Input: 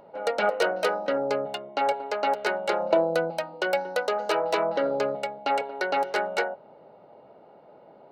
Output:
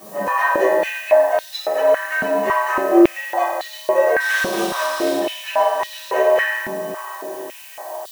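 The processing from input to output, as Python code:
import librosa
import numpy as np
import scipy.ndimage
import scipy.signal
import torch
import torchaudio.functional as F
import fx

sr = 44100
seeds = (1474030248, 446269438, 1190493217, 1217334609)

p1 = fx.partial_stretch(x, sr, pct=114)
p2 = fx.high_shelf_res(p1, sr, hz=2900.0, db=-7.5, q=1.5)
p3 = fx.over_compress(p2, sr, threshold_db=-36.0, ratio=-1.0)
p4 = p2 + (p3 * 10.0 ** (1.0 / 20.0))
p5 = fx.dmg_noise_colour(p4, sr, seeds[0], colour='blue', level_db=-45.0)
p6 = fx.sample_hold(p5, sr, seeds[1], rate_hz=4700.0, jitter_pct=20, at=(4.2, 5.17))
p7 = p6 + fx.echo_diffused(p6, sr, ms=562, feedback_pct=59, wet_db=-14, dry=0)
p8 = fx.rev_fdn(p7, sr, rt60_s=1.4, lf_ratio=1.5, hf_ratio=0.75, size_ms=16.0, drr_db=-7.0)
p9 = fx.filter_held_highpass(p8, sr, hz=3.6, low_hz=210.0, high_hz=3800.0)
y = p9 * 10.0 ** (-4.0 / 20.0)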